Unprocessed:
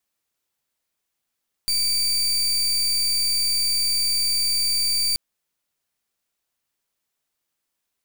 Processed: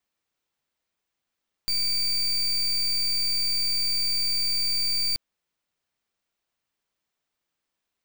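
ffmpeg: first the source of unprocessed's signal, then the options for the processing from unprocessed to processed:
-f lavfi -i "aevalsrc='0.0841*(2*lt(mod(4640*t,1),0.33)-1)':d=3.48:s=44100"
-af "equalizer=f=13k:w=0.56:g=-13"

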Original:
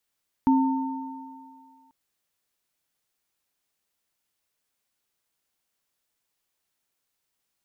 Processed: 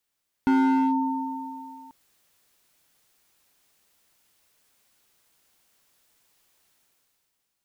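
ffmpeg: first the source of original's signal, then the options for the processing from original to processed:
-f lavfi -i "aevalsrc='0.168*pow(10,-3*t/1.84)*sin(2*PI*266*t)+0.075*pow(10,-3*t/2.43)*sin(2*PI*904*t)':d=1.44:s=44100"
-af "dynaudnorm=f=170:g=9:m=13dB,asoftclip=type=hard:threshold=-17.5dB"

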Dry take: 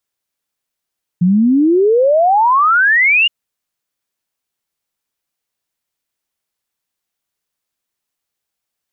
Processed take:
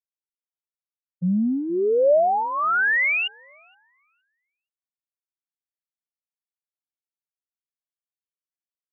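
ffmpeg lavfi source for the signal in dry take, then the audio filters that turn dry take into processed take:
-f lavfi -i "aevalsrc='0.398*clip(min(t,2.07-t)/0.01,0,1)*sin(2*PI*170*2.07/log(2900/170)*(exp(log(2900/170)*t/2.07)-1))':d=2.07:s=44100"
-filter_complex "[0:a]agate=range=-33dB:threshold=-5dB:ratio=3:detection=peak,highpass=110,equalizer=f=310:t=q:w=4:g=-9,equalizer=f=590:t=q:w=4:g=5,equalizer=f=1k:t=q:w=4:g=-9,lowpass=f=2.5k:w=0.5412,lowpass=f=2.5k:w=1.3066,asplit=2[a][b];[b]adelay=469,lowpass=f=880:p=1,volume=-23dB,asplit=2[c][d];[d]adelay=469,lowpass=f=880:p=1,volume=0.47,asplit=2[e][f];[f]adelay=469,lowpass=f=880:p=1,volume=0.47[g];[a][c][e][g]amix=inputs=4:normalize=0"

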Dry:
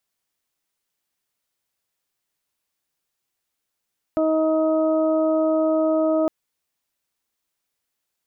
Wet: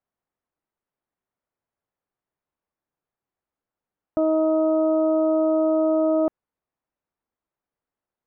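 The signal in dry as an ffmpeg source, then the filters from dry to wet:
-f lavfi -i "aevalsrc='0.0944*sin(2*PI*316*t)+0.112*sin(2*PI*632*t)+0.0133*sin(2*PI*948*t)+0.0251*sin(2*PI*1264*t)':d=2.11:s=44100"
-af "lowpass=1.2k"

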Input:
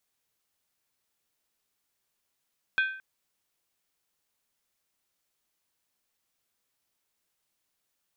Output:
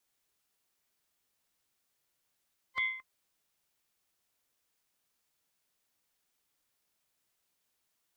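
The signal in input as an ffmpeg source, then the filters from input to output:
-f lavfi -i "aevalsrc='0.1*pow(10,-3*t/0.54)*sin(2*PI*1550*t)+0.0447*pow(10,-3*t/0.428)*sin(2*PI*2470.7*t)+0.02*pow(10,-3*t/0.369)*sin(2*PI*3310.8*t)+0.00891*pow(10,-3*t/0.356)*sin(2*PI*3558.8*t)+0.00398*pow(10,-3*t/0.332)*sin(2*PI*4112.1*t)':d=0.22:s=44100"
-filter_complex "[0:a]afftfilt=real='real(if(between(b,1,1008),(2*floor((b-1)/24)+1)*24-b,b),0)':imag='imag(if(between(b,1,1008),(2*floor((b-1)/24)+1)*24-b,b),0)*if(between(b,1,1008),-1,1)':win_size=2048:overlap=0.75,acrossover=split=100[a][b];[b]alimiter=limit=-24dB:level=0:latency=1:release=53[c];[a][c]amix=inputs=2:normalize=0"

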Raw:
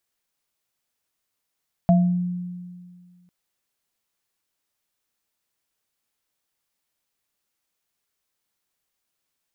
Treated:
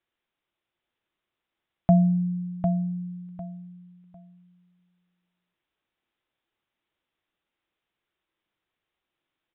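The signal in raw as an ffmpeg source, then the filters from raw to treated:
-f lavfi -i "aevalsrc='0.251*pow(10,-3*t/1.96)*sin(2*PI*178*t)+0.158*pow(10,-3*t/0.36)*sin(2*PI*680*t)':d=1.4:s=44100"
-filter_complex "[0:a]asplit=2[a][b];[b]aecho=0:1:751|1502|2253:0.501|0.115|0.0265[c];[a][c]amix=inputs=2:normalize=0,aresample=8000,aresample=44100,equalizer=f=340:w=6.9:g=8"

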